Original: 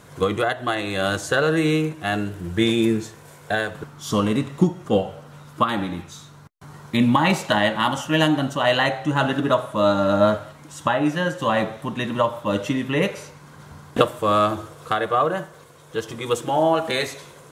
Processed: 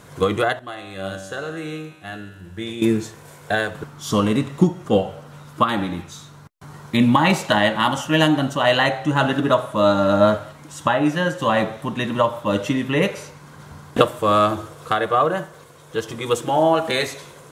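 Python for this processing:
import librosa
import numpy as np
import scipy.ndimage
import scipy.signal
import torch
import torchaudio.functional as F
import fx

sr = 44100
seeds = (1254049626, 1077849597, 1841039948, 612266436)

y = fx.comb_fb(x, sr, f0_hz=96.0, decay_s=1.3, harmonics='all', damping=0.0, mix_pct=80, at=(0.59, 2.82))
y = y * librosa.db_to_amplitude(2.0)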